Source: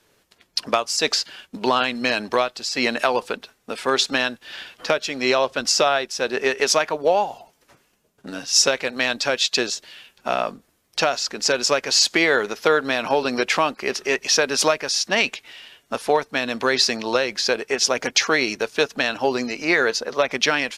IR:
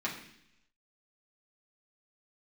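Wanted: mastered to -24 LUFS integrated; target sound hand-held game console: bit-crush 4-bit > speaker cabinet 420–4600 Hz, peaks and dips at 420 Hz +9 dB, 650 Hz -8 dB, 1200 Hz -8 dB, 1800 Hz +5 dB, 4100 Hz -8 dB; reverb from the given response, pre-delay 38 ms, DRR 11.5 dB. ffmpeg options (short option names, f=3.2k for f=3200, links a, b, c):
-filter_complex "[0:a]asplit=2[a][b];[1:a]atrim=start_sample=2205,adelay=38[c];[b][c]afir=irnorm=-1:irlink=0,volume=-17dB[d];[a][d]amix=inputs=2:normalize=0,acrusher=bits=3:mix=0:aa=0.000001,highpass=420,equalizer=f=420:t=q:w=4:g=9,equalizer=f=650:t=q:w=4:g=-8,equalizer=f=1.2k:t=q:w=4:g=-8,equalizer=f=1.8k:t=q:w=4:g=5,equalizer=f=4.1k:t=q:w=4:g=-8,lowpass=f=4.6k:w=0.5412,lowpass=f=4.6k:w=1.3066,volume=-2dB"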